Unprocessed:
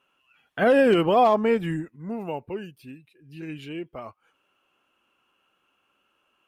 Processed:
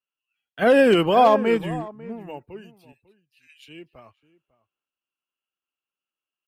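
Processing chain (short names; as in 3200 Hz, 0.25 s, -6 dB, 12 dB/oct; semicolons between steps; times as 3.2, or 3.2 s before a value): 2.92–3.68 HPF 1300 Hz 24 dB/oct; outdoor echo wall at 94 m, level -12 dB; three-band expander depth 70%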